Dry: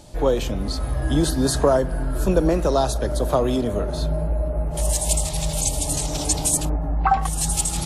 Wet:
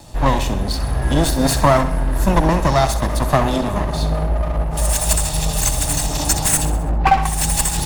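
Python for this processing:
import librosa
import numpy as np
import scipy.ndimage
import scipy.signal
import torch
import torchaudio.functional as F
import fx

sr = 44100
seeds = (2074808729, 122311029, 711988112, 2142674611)

p1 = fx.lower_of_two(x, sr, delay_ms=1.1)
p2 = p1 + fx.echo_feedback(p1, sr, ms=65, feedback_pct=52, wet_db=-12.0, dry=0)
y = p2 * librosa.db_to_amplitude(5.5)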